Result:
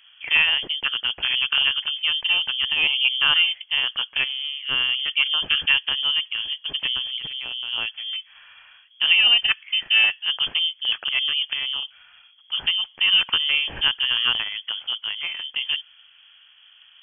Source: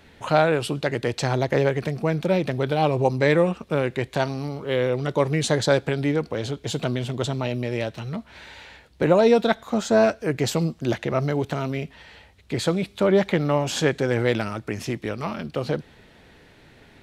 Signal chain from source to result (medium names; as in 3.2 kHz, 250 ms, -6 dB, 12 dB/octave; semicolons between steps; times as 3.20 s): local Wiener filter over 15 samples; frequency inversion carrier 3.3 kHz; 7.02–7.73 s: compressor with a negative ratio -31 dBFS, ratio -1